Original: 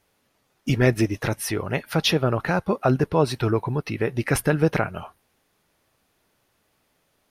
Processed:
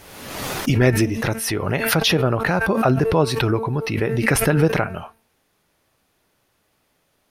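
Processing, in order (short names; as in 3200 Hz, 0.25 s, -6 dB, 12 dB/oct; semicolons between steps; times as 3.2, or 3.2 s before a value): de-hum 224.5 Hz, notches 13; backwards sustainer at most 43 dB/s; gain +2 dB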